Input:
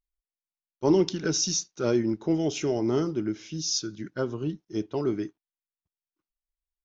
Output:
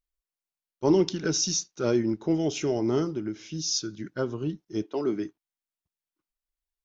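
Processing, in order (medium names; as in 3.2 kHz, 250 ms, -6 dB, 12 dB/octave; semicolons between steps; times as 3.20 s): 3.04–3.55 s: compression, threshold -27 dBFS, peak gain reduction 4.5 dB; 4.83–5.24 s: high-pass 290 Hz -> 110 Hz 24 dB/octave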